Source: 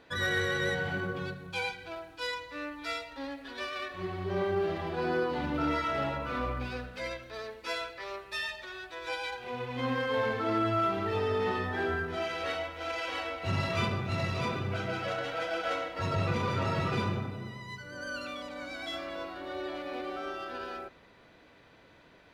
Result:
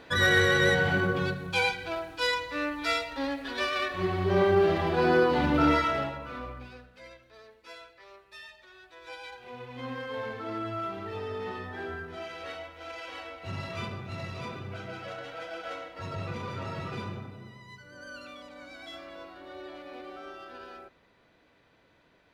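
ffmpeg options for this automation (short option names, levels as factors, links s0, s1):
-af "volume=4.73,afade=t=out:st=5.69:d=0.43:silence=0.281838,afade=t=out:st=6.12:d=0.74:silence=0.375837,afade=t=in:st=8.58:d=0.87:silence=0.501187"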